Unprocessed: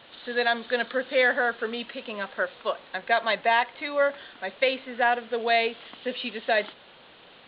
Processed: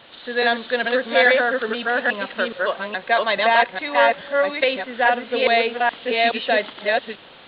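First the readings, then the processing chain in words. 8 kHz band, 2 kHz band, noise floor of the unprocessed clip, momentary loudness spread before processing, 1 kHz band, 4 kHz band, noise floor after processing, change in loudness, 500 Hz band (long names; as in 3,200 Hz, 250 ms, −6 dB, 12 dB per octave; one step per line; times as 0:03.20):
can't be measured, +7.0 dB, −52 dBFS, 11 LU, +7.0 dB, +7.0 dB, −45 dBFS, +6.5 dB, +6.5 dB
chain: delay that plays each chunk backwards 421 ms, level −0.5 dB
level +4 dB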